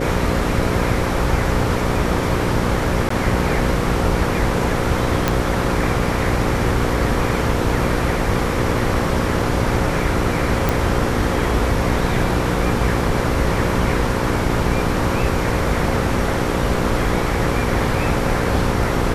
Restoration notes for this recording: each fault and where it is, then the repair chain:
buzz 60 Hz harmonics 9 -23 dBFS
3.09–3.1 gap 14 ms
5.28 pop -2 dBFS
10.69 pop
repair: de-click; de-hum 60 Hz, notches 9; interpolate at 3.09, 14 ms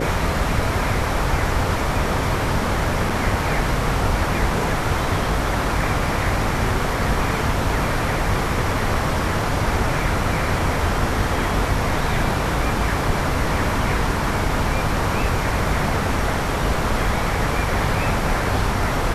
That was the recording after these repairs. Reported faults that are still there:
none

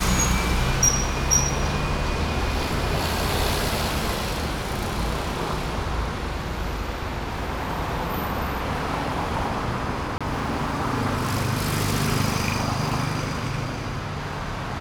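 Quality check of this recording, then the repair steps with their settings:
10.18–10.21 gap 26 ms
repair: interpolate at 10.18, 26 ms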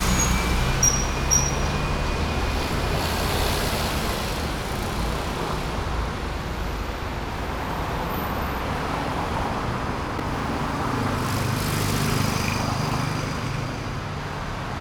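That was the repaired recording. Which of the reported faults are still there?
none

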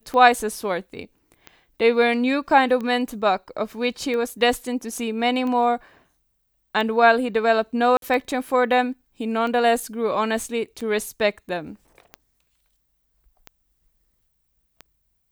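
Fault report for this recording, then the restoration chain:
tick 45 rpm -19 dBFS
7.97–8.02 gap 52 ms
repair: de-click; interpolate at 7.97, 52 ms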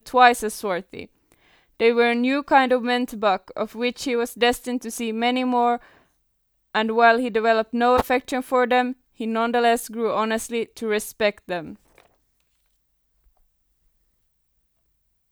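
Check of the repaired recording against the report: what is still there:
none

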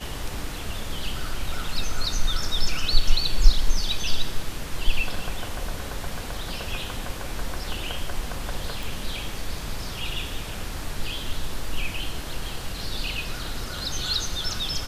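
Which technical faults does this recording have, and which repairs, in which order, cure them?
8.83 pop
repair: de-click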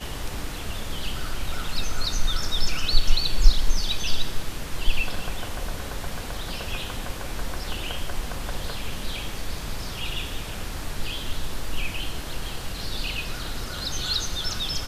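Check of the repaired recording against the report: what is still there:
none

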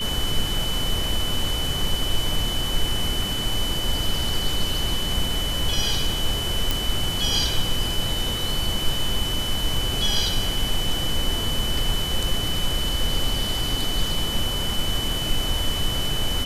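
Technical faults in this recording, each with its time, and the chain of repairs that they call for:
tone 3000 Hz -27 dBFS
6.71 pop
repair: de-click; notch 3000 Hz, Q 30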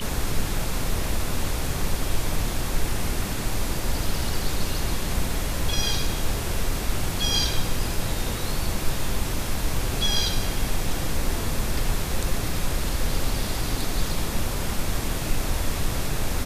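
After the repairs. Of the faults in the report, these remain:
none

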